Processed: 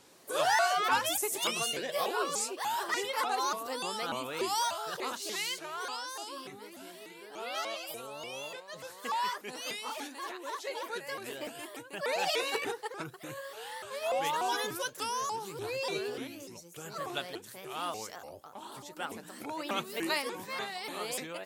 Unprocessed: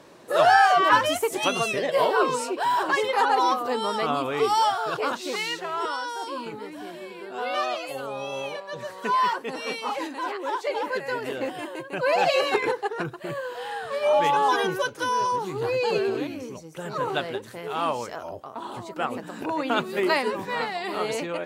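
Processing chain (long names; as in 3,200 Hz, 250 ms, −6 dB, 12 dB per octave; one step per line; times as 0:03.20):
first-order pre-emphasis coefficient 0.8
pitch modulation by a square or saw wave saw up 3.4 Hz, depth 250 cents
level +2 dB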